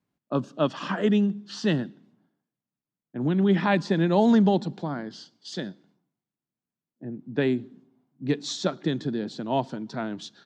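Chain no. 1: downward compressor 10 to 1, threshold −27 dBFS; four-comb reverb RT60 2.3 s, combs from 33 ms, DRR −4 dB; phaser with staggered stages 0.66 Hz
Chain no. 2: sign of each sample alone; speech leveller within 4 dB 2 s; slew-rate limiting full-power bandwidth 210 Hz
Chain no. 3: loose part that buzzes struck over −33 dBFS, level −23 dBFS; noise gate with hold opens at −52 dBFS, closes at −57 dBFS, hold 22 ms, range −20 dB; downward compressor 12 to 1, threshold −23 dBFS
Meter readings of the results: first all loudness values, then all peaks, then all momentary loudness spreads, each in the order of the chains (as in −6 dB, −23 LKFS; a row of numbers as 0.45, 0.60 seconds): −32.0, −27.5, −30.5 LKFS; −14.5, −26.0, −14.5 dBFS; 14, 2, 11 LU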